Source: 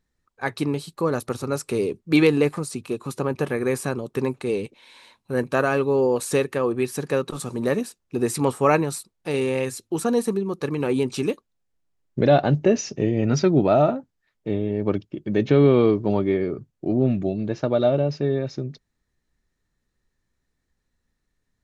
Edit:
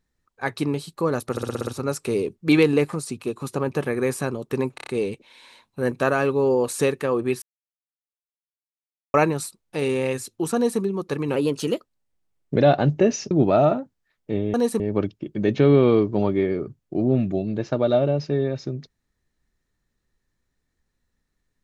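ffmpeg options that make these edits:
-filter_complex "[0:a]asplit=18[s0][s1][s2][s3][s4][s5][s6][s7][s8][s9][s10][s11][s12][s13][s14][s15][s16][s17];[s0]atrim=end=1.372[s18];[s1]atrim=start=1.308:end=1.372[s19];[s2]atrim=start=1.308:end=1.372[s20];[s3]atrim=start=1.308:end=1.372[s21];[s4]atrim=start=1.308:end=1.372[s22];[s5]atrim=start=1.308:end=1.372[s23];[s6]atrim=start=1.308:end=4.422[s24];[s7]atrim=start=4.388:end=4.422[s25];[s8]atrim=start=4.388:end=4.422[s26];[s9]atrim=start=4.388:end=4.422[s27];[s10]atrim=start=4.388:end=6.94,asetpts=PTS-STARTPTS,afade=t=out:st=2.548:d=0.004:c=hsin[s28];[s11]atrim=start=6.94:end=8.66,asetpts=PTS-STARTPTS,volume=0[s29];[s12]atrim=start=8.66:end=10.884,asetpts=PTS-STARTPTS,afade=t=in:d=0.004:c=hsin[s30];[s13]atrim=start=10.88:end=12.2,asetpts=PTS-STARTPTS,asetrate=48951,aresample=44100,atrim=end_sample=52443,asetpts=PTS-STARTPTS[s31];[s14]atrim=start=12.196:end=12.962[s32];[s15]atrim=start=13.478:end=14.712[s33];[s16]atrim=start=10.068:end=10.332[s34];[s17]atrim=start=14.708[s35];[s18][s19]acrossfade=d=0.004:c1=hsin:c2=hsin[s36];[s36][s20]acrossfade=d=0.004:c1=hsin:c2=hsin[s37];[s37][s21]acrossfade=d=0.004:c1=hsin:c2=hsin[s38];[s38][s22]acrossfade=d=0.004:c1=hsin:c2=hsin[s39];[s39][s23]acrossfade=d=0.004:c1=hsin:c2=hsin[s40];[s40][s24]acrossfade=d=0.004:c1=hsin:c2=hsin[s41];[s41][s25]acrossfade=d=0.004:c1=hsin:c2=hsin[s42];[s42][s26]acrossfade=d=0.004:c1=hsin:c2=hsin[s43];[s43][s27]acrossfade=d=0.004:c1=hsin:c2=hsin[s44];[s28][s29][s30]concat=n=3:v=0:a=1[s45];[s44][s45]acrossfade=d=0.004:c1=hsin:c2=hsin[s46];[s46][s31]acrossfade=d=0.004:c1=hsin:c2=hsin[s47];[s47][s32]acrossfade=d=0.004:c1=hsin:c2=hsin[s48];[s48][s33]acrossfade=d=0.004:c1=hsin:c2=hsin[s49];[s49][s34]acrossfade=d=0.004:c1=hsin:c2=hsin[s50];[s50][s35]acrossfade=d=0.004:c1=hsin:c2=hsin"

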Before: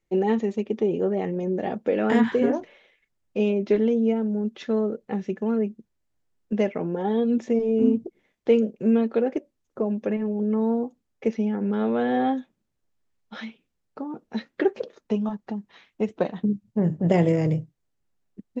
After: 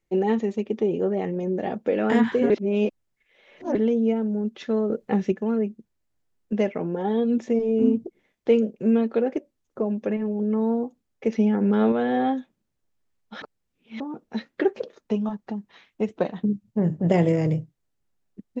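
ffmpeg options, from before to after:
-filter_complex "[0:a]asplit=9[s0][s1][s2][s3][s4][s5][s6][s7][s8];[s0]atrim=end=2.502[s9];[s1]atrim=start=2.498:end=3.752,asetpts=PTS-STARTPTS,areverse[s10];[s2]atrim=start=3.748:end=4.902[s11];[s3]atrim=start=4.898:end=5.322,asetpts=PTS-STARTPTS,volume=1.88[s12];[s4]atrim=start=5.318:end=11.322[s13];[s5]atrim=start=11.318:end=11.922,asetpts=PTS-STARTPTS,volume=1.68[s14];[s6]atrim=start=11.918:end=13.422[s15];[s7]atrim=start=13.418:end=14.002,asetpts=PTS-STARTPTS,areverse[s16];[s8]atrim=start=13.998[s17];[s9][s10]acrossfade=d=0.004:c1=hsin:c2=hsin[s18];[s18][s11]acrossfade=d=0.004:c1=hsin:c2=hsin[s19];[s19][s12]acrossfade=d=0.004:c1=hsin:c2=hsin[s20];[s20][s13]acrossfade=d=0.004:c1=hsin:c2=hsin[s21];[s21][s14]acrossfade=d=0.004:c1=hsin:c2=hsin[s22];[s22][s15]acrossfade=d=0.004:c1=hsin:c2=hsin[s23];[s23][s16]acrossfade=d=0.004:c1=hsin:c2=hsin[s24];[s24][s17]acrossfade=d=0.004:c1=hsin:c2=hsin"

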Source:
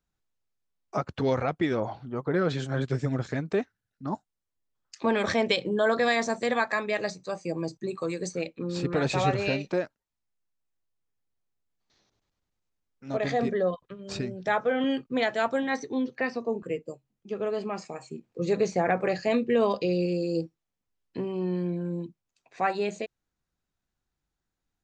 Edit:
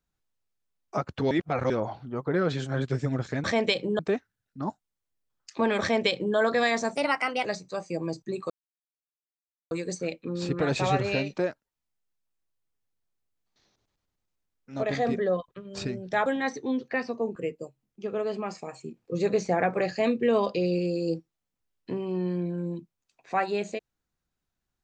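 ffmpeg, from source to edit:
-filter_complex "[0:a]asplit=9[s0][s1][s2][s3][s4][s5][s6][s7][s8];[s0]atrim=end=1.312[s9];[s1]atrim=start=1.308:end=1.702,asetpts=PTS-STARTPTS,areverse[s10];[s2]atrim=start=1.698:end=3.442[s11];[s3]atrim=start=5.258:end=5.812[s12];[s4]atrim=start=3.438:end=6.404[s13];[s5]atrim=start=6.4:end=7,asetpts=PTS-STARTPTS,asetrate=52920,aresample=44100[s14];[s6]atrim=start=6.996:end=8.05,asetpts=PTS-STARTPTS,afade=t=out:st=1.05:d=0.004:c=hsin,apad=pad_dur=1.21[s15];[s7]atrim=start=8.05:end=14.602,asetpts=PTS-STARTPTS,afade=t=in:d=0.004:c=hsin[s16];[s8]atrim=start=15.528[s17];[s9][s10]acrossfade=d=0.004:c1=hsin:c2=hsin[s18];[s18][s11]acrossfade=d=0.004:c1=hsin:c2=hsin[s19];[s19][s12]acrossfade=d=0.004:c1=hsin:c2=hsin[s20];[s20][s13]acrossfade=d=0.004:c1=hsin:c2=hsin[s21];[s21][s14]acrossfade=d=0.004:c1=hsin:c2=hsin[s22];[s15][s16]concat=n=2:v=0:a=1[s23];[s22][s23]acrossfade=d=0.004:c1=hsin:c2=hsin[s24];[s24][s17]acrossfade=d=0.004:c1=hsin:c2=hsin"

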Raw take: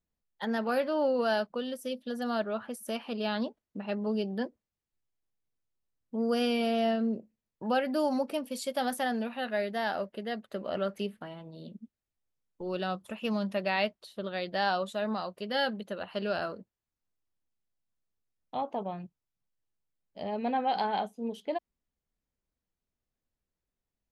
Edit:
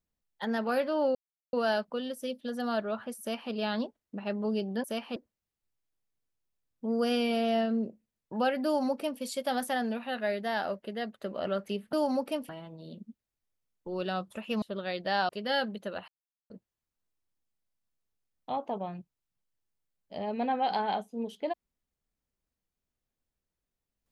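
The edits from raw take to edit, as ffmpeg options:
-filter_complex "[0:a]asplit=10[s0][s1][s2][s3][s4][s5][s6][s7][s8][s9];[s0]atrim=end=1.15,asetpts=PTS-STARTPTS,afade=t=out:st=1.146:d=0.004:c=hsin,apad=pad_dur=0.38[s10];[s1]atrim=start=1.15:end=4.462,asetpts=PTS-STARTPTS,afade=t=in:d=0.004:c=hsin[s11];[s2]atrim=start=2.818:end=3.142[s12];[s3]atrim=start=4.458:end=11.232[s13];[s4]atrim=start=7.948:end=8.512[s14];[s5]atrim=start=11.228:end=13.362[s15];[s6]atrim=start=14.098:end=14.772[s16];[s7]atrim=start=15.338:end=16.13,asetpts=PTS-STARTPTS,afade=t=out:st=0.788:d=0.004:c=hsin[s17];[s8]atrim=start=16.13:end=16.55,asetpts=PTS-STARTPTS,volume=0[s18];[s9]atrim=start=16.55,asetpts=PTS-STARTPTS,afade=t=in:d=0.004:c=hsin[s19];[s10][s11]concat=n=2:v=0:a=1[s20];[s20][s12]acrossfade=d=0.004:c1=hsin:c2=hsin[s21];[s21][s13]acrossfade=d=0.004:c1=hsin:c2=hsin[s22];[s22][s14]acrossfade=d=0.004:c1=hsin:c2=hsin[s23];[s23][s15]acrossfade=d=0.004:c1=hsin:c2=hsin[s24];[s24][s16]acrossfade=d=0.004:c1=hsin:c2=hsin[s25];[s17][s18][s19]concat=n=3:v=0:a=1[s26];[s25][s26]acrossfade=d=0.004:c1=hsin:c2=hsin"

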